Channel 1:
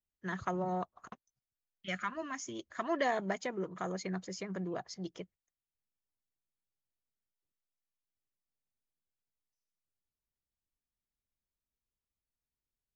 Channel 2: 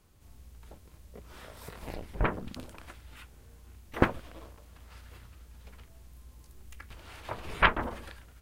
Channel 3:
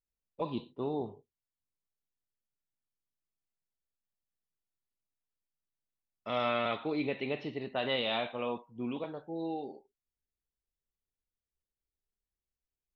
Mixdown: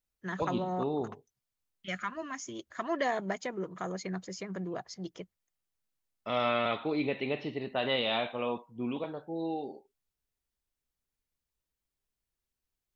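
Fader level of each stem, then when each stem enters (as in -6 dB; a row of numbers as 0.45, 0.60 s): +1.0 dB, off, +2.0 dB; 0.00 s, off, 0.00 s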